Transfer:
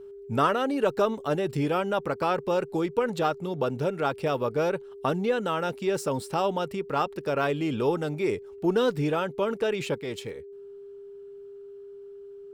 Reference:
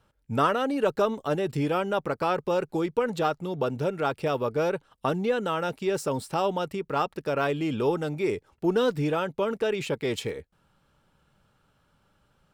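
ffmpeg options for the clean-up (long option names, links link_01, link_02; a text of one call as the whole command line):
ffmpeg -i in.wav -af "bandreject=frequency=400:width=30,asetnsamples=nb_out_samples=441:pad=0,asendcmd='9.98 volume volume 5.5dB',volume=0dB" out.wav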